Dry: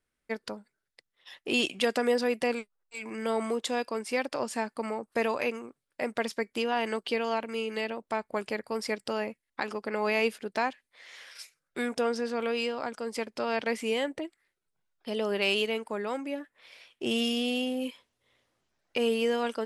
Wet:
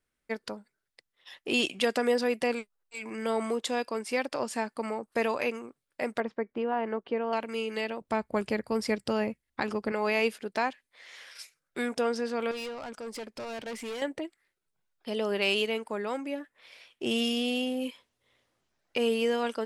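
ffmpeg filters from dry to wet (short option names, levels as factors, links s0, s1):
-filter_complex "[0:a]asettb=1/sr,asplit=3[s0][s1][s2];[s0]atrim=end=6.204[s3];[s1]atrim=start=6.2:end=7.33,asetpts=PTS-STARTPTS,afade=t=in:d=0.004:c=qsin,afade=t=out:st=1.126:d=0.004:c=qsin,lowpass=1300[s4];[s2]atrim=start=7.326[s5];[s3][s4]acrossfade=d=0.004:c1=hsin:c2=qsin[s6];[s6][s5]acrossfade=d=0.004:c1=qsin:c2=hsin,asettb=1/sr,asplit=3[s7][s8][s9];[s7]atrim=end=8.014[s10];[s8]atrim=start=8.01:end=9.92,asetpts=PTS-STARTPTS,afade=t=in:d=0.004:c=qsin,afade=t=out:st=1.906:d=0.004:c=qsin,equalizer=f=61:w=0.33:g=14.5[s11];[s9]atrim=start=9.916[s12];[s10][s11]acrossfade=d=0.004:c1=hsin:c2=qsin[s13];[s13][s12]acrossfade=d=0.004:c1=qsin:c2=hsin,asettb=1/sr,asplit=3[s14][s15][s16];[s14]atrim=end=12.514[s17];[s15]atrim=start=12.51:end=14.02,asetpts=PTS-STARTPTS,afade=t=in:d=0.004:c=qsin,afade=t=out:st=1.506:d=0.004:c=qsin,aeval=exprs='(tanh(50.1*val(0)+0.2)-tanh(0.2))/50.1':c=same[s18];[s16]atrim=start=14.016[s19];[s17][s18]acrossfade=d=0.004:c1=hsin:c2=qsin[s20];[s20][s19]acrossfade=d=0.004:c1=qsin:c2=hsin"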